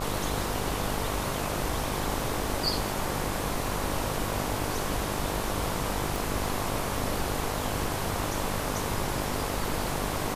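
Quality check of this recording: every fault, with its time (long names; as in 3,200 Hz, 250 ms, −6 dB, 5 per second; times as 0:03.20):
mains buzz 50 Hz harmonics 23 −35 dBFS
0:06.16: click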